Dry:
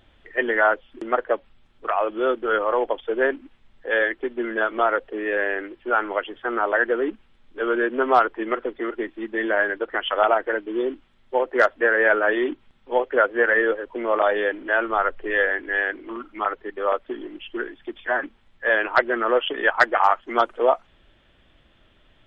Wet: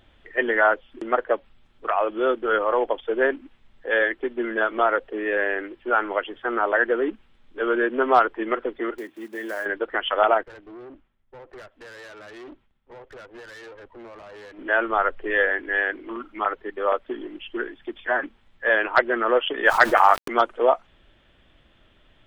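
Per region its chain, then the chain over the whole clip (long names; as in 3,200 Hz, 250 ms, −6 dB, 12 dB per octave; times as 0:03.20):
0:08.98–0:09.66: one scale factor per block 5 bits + high-pass filter 95 Hz 24 dB per octave + downward compressor 1.5 to 1, threshold −42 dBFS
0:10.43–0:14.59: downward compressor 16 to 1, threshold −30 dBFS + tube saturation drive 39 dB, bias 0.65 + multiband upward and downward expander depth 100%
0:19.66–0:20.28: centre clipping without the shift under −39 dBFS + envelope flattener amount 50%
whole clip: no processing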